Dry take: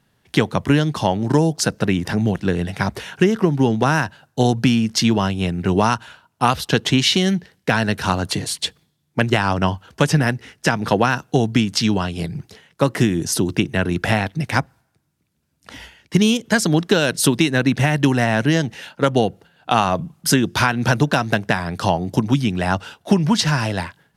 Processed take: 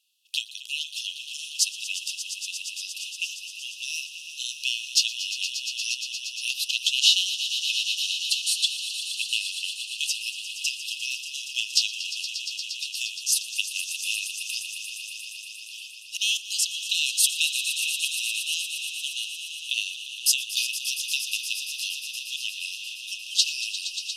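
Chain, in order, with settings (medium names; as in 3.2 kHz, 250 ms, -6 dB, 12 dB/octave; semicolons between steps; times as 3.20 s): brick-wall FIR high-pass 2.5 kHz; echo with a slow build-up 117 ms, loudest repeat 5, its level -12.5 dB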